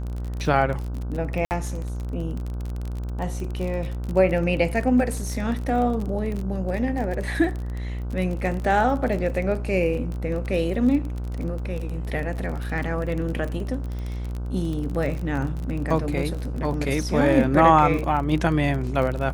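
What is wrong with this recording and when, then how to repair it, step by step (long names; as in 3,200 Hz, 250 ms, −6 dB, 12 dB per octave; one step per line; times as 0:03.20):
mains buzz 60 Hz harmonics 26 −29 dBFS
surface crackle 30 per second −28 dBFS
0:01.45–0:01.51: drop-out 59 ms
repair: click removal
hum removal 60 Hz, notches 26
repair the gap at 0:01.45, 59 ms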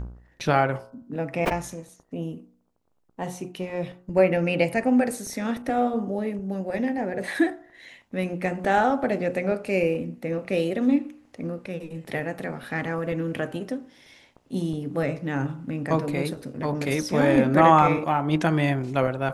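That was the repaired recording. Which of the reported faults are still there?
none of them is left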